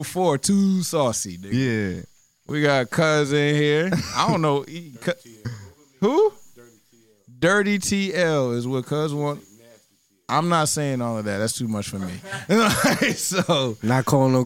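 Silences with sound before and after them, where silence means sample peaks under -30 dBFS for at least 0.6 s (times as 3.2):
6.29–7.42
9.38–10.29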